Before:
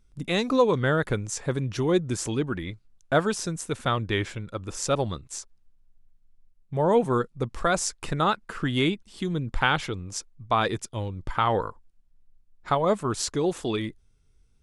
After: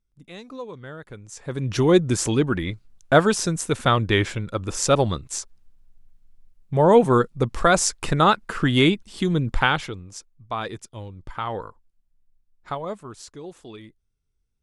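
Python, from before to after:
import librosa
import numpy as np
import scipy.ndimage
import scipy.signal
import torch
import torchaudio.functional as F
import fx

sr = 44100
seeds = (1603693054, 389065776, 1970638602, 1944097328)

y = fx.gain(x, sr, db=fx.line((1.08, -15.0), (1.49, -4.0), (1.73, 6.5), (9.47, 6.5), (10.14, -5.5), (12.71, -5.5), (13.18, -13.0)))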